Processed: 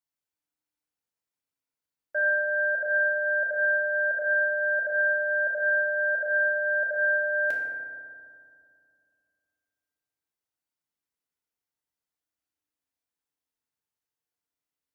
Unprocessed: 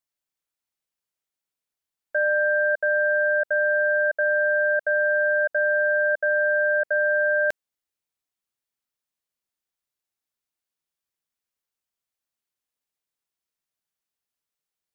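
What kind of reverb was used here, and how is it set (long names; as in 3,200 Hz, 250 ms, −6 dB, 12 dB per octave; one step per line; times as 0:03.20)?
feedback delay network reverb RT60 2.3 s, low-frequency decay 1.3×, high-frequency decay 0.3×, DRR −3 dB
level −7 dB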